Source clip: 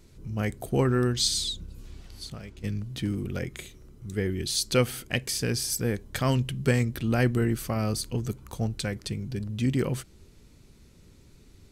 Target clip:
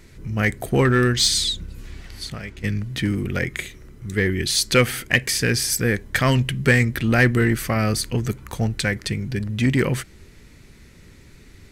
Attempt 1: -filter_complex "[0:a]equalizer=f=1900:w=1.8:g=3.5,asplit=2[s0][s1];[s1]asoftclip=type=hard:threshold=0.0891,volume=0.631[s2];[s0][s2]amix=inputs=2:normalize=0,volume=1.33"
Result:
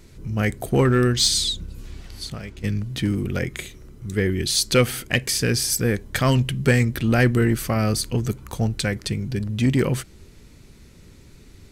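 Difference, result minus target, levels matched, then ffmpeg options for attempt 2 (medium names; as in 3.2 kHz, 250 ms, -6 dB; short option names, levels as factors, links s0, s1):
2 kHz band -4.5 dB
-filter_complex "[0:a]equalizer=f=1900:w=1.8:g=10.5,asplit=2[s0][s1];[s1]asoftclip=type=hard:threshold=0.0891,volume=0.631[s2];[s0][s2]amix=inputs=2:normalize=0,volume=1.33"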